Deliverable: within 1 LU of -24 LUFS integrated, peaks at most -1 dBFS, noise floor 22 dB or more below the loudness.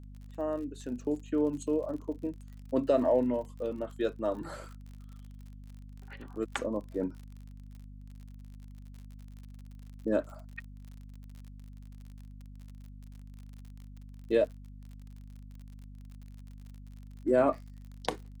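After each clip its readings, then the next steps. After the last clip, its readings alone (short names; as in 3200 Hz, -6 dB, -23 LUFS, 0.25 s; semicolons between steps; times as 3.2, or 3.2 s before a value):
ticks 49/s; hum 50 Hz; harmonics up to 250 Hz; hum level -45 dBFS; loudness -32.0 LUFS; peak -13.0 dBFS; loudness target -24.0 LUFS
-> de-click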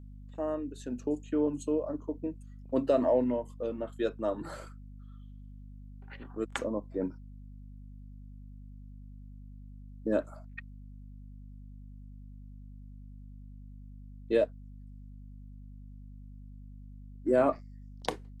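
ticks 0.054/s; hum 50 Hz; harmonics up to 250 Hz; hum level -45 dBFS
-> de-hum 50 Hz, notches 5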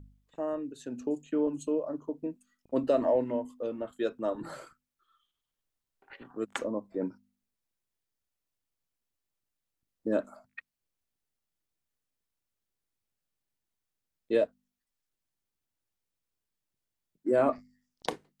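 hum none; loudness -32.5 LUFS; peak -13.0 dBFS; loudness target -24.0 LUFS
-> gain +8.5 dB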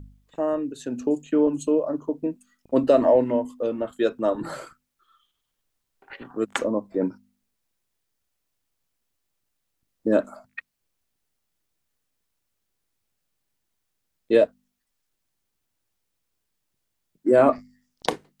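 loudness -24.0 LUFS; peak -4.5 dBFS; noise floor -78 dBFS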